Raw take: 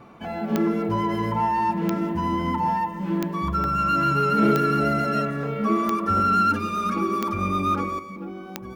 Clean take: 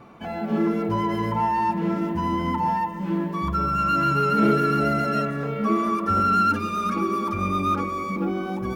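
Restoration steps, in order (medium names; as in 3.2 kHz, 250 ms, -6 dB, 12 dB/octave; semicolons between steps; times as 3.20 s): de-click; interpolate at 3.64 s, 1.2 ms; trim 0 dB, from 7.99 s +9.5 dB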